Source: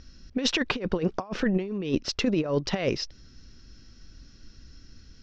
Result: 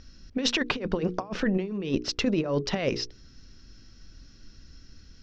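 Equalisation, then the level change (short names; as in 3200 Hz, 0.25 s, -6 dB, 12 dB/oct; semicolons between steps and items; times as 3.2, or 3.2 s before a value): notches 60/120/180/240/300/360/420/480 Hz; 0.0 dB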